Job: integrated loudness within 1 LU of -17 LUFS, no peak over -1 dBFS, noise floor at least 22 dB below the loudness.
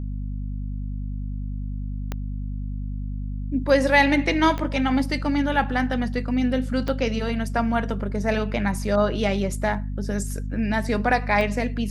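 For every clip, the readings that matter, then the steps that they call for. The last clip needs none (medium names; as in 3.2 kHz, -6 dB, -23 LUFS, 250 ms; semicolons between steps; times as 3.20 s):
clicks found 4; hum 50 Hz; highest harmonic 250 Hz; hum level -26 dBFS; loudness -24.5 LUFS; peak level -5.0 dBFS; loudness target -17.0 LUFS
-> de-click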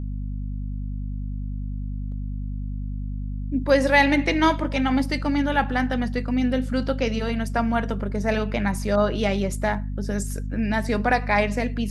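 clicks found 0; hum 50 Hz; highest harmonic 250 Hz; hum level -26 dBFS
-> de-hum 50 Hz, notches 5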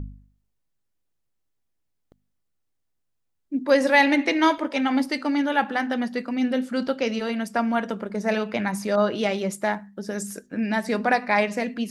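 hum not found; loudness -24.0 LUFS; peak level -5.5 dBFS; loudness target -17.0 LUFS
-> trim +7 dB; peak limiter -1 dBFS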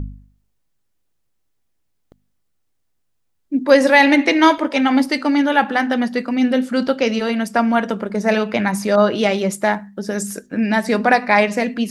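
loudness -17.0 LUFS; peak level -1.0 dBFS; noise floor -68 dBFS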